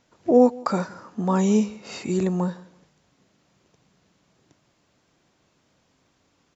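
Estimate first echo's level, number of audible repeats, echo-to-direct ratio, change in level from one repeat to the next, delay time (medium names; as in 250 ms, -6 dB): -23.0 dB, 2, -22.5 dB, -10.5 dB, 166 ms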